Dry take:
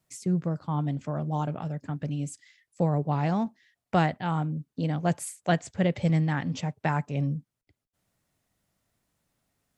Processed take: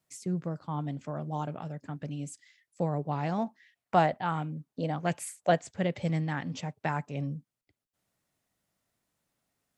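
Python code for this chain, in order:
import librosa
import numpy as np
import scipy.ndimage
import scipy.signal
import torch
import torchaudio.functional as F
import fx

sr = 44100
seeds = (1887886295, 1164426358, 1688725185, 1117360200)

y = fx.low_shelf(x, sr, hz=130.0, db=-8.0)
y = fx.bell_lfo(y, sr, hz=1.4, low_hz=560.0, high_hz=2700.0, db=9, at=(3.38, 5.58))
y = y * 10.0 ** (-3.0 / 20.0)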